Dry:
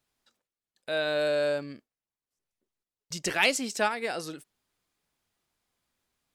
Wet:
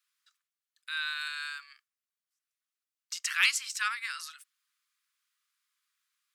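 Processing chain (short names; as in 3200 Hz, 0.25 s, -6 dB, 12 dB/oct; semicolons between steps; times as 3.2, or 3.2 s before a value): steep high-pass 1100 Hz 72 dB/oct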